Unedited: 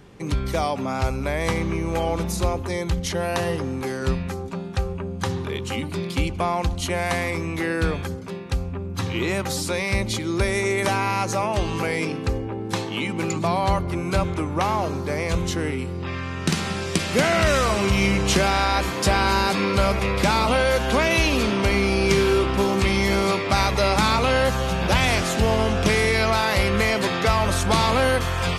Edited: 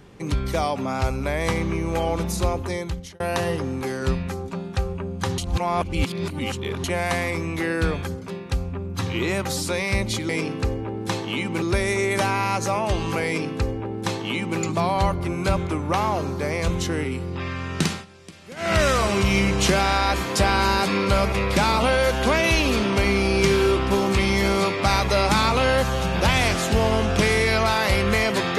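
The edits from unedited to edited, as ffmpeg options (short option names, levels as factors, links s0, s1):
-filter_complex "[0:a]asplit=8[s0][s1][s2][s3][s4][s5][s6][s7];[s0]atrim=end=3.2,asetpts=PTS-STARTPTS,afade=t=out:st=2.68:d=0.52[s8];[s1]atrim=start=3.2:end=5.382,asetpts=PTS-STARTPTS,afade=t=in:d=0.004:c=hsin[s9];[s2]atrim=start=5.378:end=6.842,asetpts=PTS-STARTPTS,areverse[s10];[s3]atrim=start=6.838:end=10.292[s11];[s4]atrim=start=11.928:end=13.262[s12];[s5]atrim=start=10.288:end=16.72,asetpts=PTS-STARTPTS,afade=t=out:st=6.242:d=0.19:silence=0.0944061[s13];[s6]atrim=start=16.72:end=17.23,asetpts=PTS-STARTPTS,volume=0.0944[s14];[s7]atrim=start=17.23,asetpts=PTS-STARTPTS,afade=t=in:d=0.19:silence=0.0944061[s15];[s8][s9]concat=n=2:v=0:a=1[s16];[s16][s10]acrossfade=d=0.004:c1=hsin:c2=hsin[s17];[s17][s11]acrossfade=d=0.004:c1=hsin:c2=hsin[s18];[s18][s12]acrossfade=d=0.004:c1=hsin:c2=hsin[s19];[s13][s14][s15]concat=n=3:v=0:a=1[s20];[s19][s20]acrossfade=d=0.004:c1=hsin:c2=hsin"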